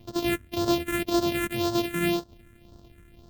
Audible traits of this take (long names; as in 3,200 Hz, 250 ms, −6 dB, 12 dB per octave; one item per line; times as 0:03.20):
a buzz of ramps at a fixed pitch in blocks of 128 samples
phaser sweep stages 4, 1.9 Hz, lowest notch 780–2,200 Hz
Ogg Vorbis